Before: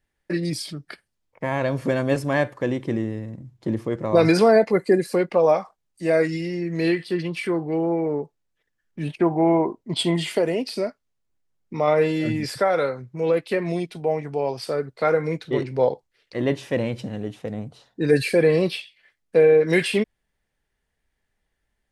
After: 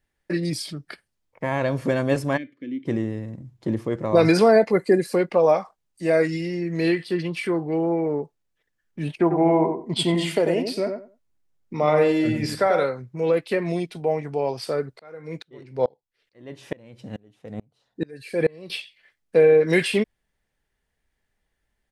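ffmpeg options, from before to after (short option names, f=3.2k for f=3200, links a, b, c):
-filter_complex "[0:a]asplit=3[a][b][c];[a]afade=t=out:st=2.36:d=0.02[d];[b]asplit=3[e][f][g];[e]bandpass=f=270:t=q:w=8,volume=0dB[h];[f]bandpass=f=2.29k:t=q:w=8,volume=-6dB[i];[g]bandpass=f=3.01k:t=q:w=8,volume=-9dB[j];[h][i][j]amix=inputs=3:normalize=0,afade=t=in:st=2.36:d=0.02,afade=t=out:st=2.85:d=0.02[k];[c]afade=t=in:st=2.85:d=0.02[l];[d][k][l]amix=inputs=3:normalize=0,asplit=3[m][n][o];[m]afade=t=out:st=9.3:d=0.02[p];[n]asplit=2[q][r];[r]adelay=92,lowpass=f=1.4k:p=1,volume=-5dB,asplit=2[s][t];[t]adelay=92,lowpass=f=1.4k:p=1,volume=0.21,asplit=2[u][v];[v]adelay=92,lowpass=f=1.4k:p=1,volume=0.21[w];[q][s][u][w]amix=inputs=4:normalize=0,afade=t=in:st=9.3:d=0.02,afade=t=out:st=12.83:d=0.02[x];[o]afade=t=in:st=12.83:d=0.02[y];[p][x][y]amix=inputs=3:normalize=0,asettb=1/sr,asplit=3[z][aa][ab];[z]atrim=end=14.994[ac];[aa]atrim=start=14.99:end=18.7,asetpts=PTS-STARTPTS,afade=t=in:d=0.004:c=qsin,afade=t=out:st=3.706:d=0.004:c=qsin,aeval=exprs='val(0)*pow(10,-31*if(lt(mod(-2.3*n/s,1),2*abs(-2.3)/1000),1-mod(-2.3*n/s,1)/(2*abs(-2.3)/1000),(mod(-2.3*n/s,1)-2*abs(-2.3)/1000)/(1-2*abs(-2.3)/1000))/20)':c=same[ad];[ab]atrim=start=18.696[ae];[ac][ad]acrossfade=d=0.004:c1=hsin:c2=qsin[af];[af][ae]acrossfade=d=0.004:c1=qsin:c2=hsin"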